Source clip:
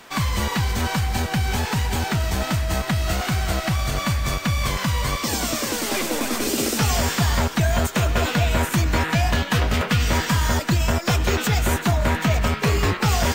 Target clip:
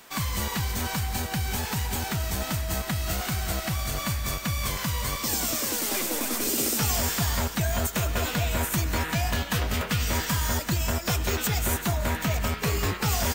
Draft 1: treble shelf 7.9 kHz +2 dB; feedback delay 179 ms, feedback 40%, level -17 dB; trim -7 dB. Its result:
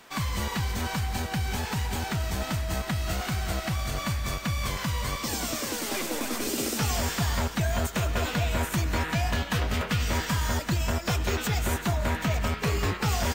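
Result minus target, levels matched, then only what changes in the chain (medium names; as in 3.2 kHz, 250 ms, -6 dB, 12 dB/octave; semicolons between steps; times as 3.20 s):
8 kHz band -3.5 dB
change: treble shelf 7.9 kHz +13 dB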